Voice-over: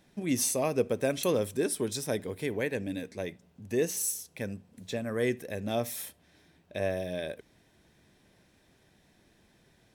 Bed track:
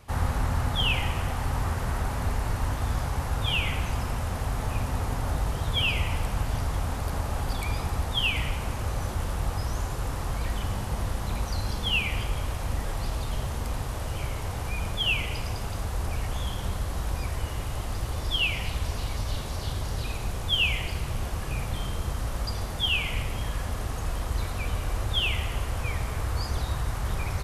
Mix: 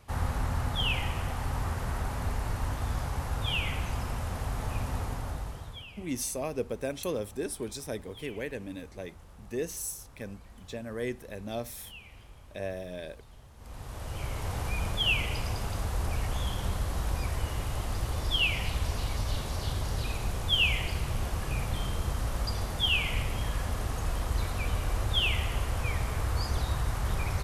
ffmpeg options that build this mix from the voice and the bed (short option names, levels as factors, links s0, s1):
-filter_complex "[0:a]adelay=5800,volume=0.562[s0];[1:a]volume=7.5,afade=t=out:st=4.96:d=0.9:silence=0.11885,afade=t=in:st=13.56:d=0.99:silence=0.0841395[s1];[s0][s1]amix=inputs=2:normalize=0"